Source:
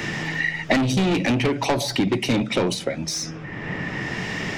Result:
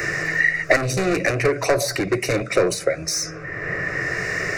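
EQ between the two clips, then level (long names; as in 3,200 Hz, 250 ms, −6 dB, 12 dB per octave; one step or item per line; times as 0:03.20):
low-shelf EQ 270 Hz −5.5 dB
phaser with its sweep stopped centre 880 Hz, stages 6
+7.5 dB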